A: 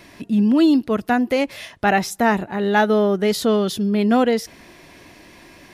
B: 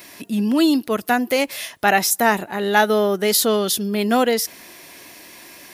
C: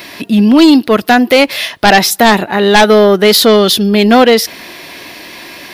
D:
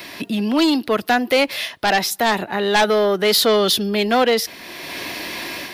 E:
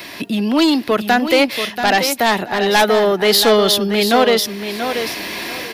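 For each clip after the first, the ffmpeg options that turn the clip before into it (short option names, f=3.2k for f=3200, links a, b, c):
-af "aemphasis=mode=production:type=bsi,volume=1.5dB"
-af "highshelf=f=5.5k:t=q:w=1.5:g=-8,aeval=exprs='0.891*sin(PI/2*2.82*val(0)/0.891)':c=same"
-filter_complex "[0:a]acrossover=split=360|500|2300[a][b][c][d];[a]alimiter=limit=-13.5dB:level=0:latency=1[e];[e][b][c][d]amix=inputs=4:normalize=0,dynaudnorm=f=200:g=3:m=6.5dB,volume=-5dB"
-af "aecho=1:1:684|1368|2052:0.376|0.0827|0.0182,volume=2.5dB"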